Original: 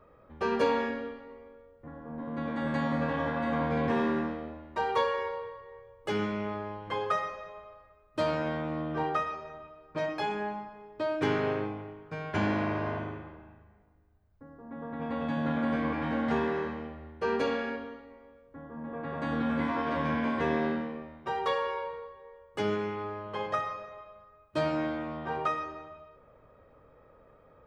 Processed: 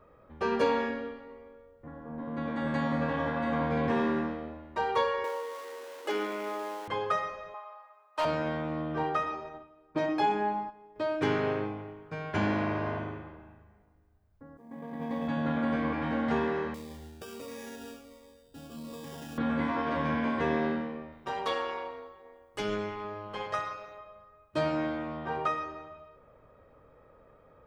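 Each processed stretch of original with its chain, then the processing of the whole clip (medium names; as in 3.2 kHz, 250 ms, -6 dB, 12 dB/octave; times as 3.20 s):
5.24–6.88 s: jump at every zero crossing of -40 dBFS + Chebyshev high-pass 270 Hz, order 4
7.54–8.25 s: resonant high-pass 880 Hz, resonance Q 3.2 + overload inside the chain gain 22.5 dB
9.23–10.96 s: peaking EQ 290 Hz +3.5 dB 0.33 oct + gate -46 dBFS, range -9 dB + small resonant body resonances 320/820/3600 Hz, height 7 dB, ringing for 25 ms
14.57–15.28 s: companding laws mixed up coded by A + peaking EQ 190 Hz +9 dB 0.54 oct + comb of notches 1.4 kHz
16.74–19.38 s: compression 12:1, threshold -37 dBFS + sample-rate reducer 4.2 kHz + Shepard-style phaser falling 1.4 Hz
21.12–23.98 s: treble shelf 3.5 kHz +9 dB + AM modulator 210 Hz, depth 45%
whole clip: none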